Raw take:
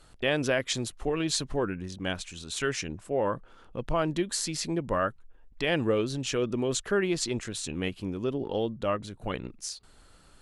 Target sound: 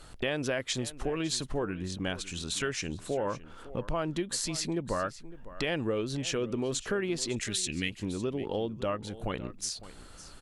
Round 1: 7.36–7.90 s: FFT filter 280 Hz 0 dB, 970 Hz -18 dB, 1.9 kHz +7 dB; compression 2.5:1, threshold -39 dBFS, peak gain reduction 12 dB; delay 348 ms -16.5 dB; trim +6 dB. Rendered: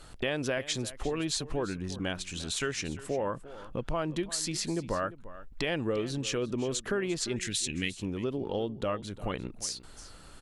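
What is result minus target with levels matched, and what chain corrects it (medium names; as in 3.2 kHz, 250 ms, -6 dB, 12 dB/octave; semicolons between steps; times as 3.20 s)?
echo 208 ms early
7.36–7.90 s: FFT filter 280 Hz 0 dB, 970 Hz -18 dB, 1.9 kHz +7 dB; compression 2.5:1, threshold -39 dBFS, peak gain reduction 12 dB; delay 556 ms -16.5 dB; trim +6 dB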